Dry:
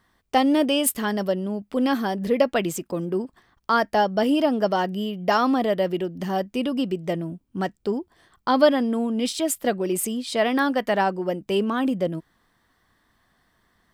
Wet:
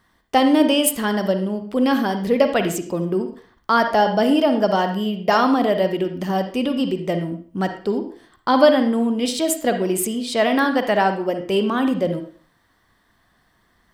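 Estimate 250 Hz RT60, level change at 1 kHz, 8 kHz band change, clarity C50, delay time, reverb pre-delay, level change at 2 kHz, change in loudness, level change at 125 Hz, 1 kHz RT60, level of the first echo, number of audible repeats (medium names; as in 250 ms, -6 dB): 0.45 s, +4.0 dB, +3.0 dB, 8.0 dB, no echo, 37 ms, +4.0 dB, +4.0 dB, +4.0 dB, 0.45 s, no echo, no echo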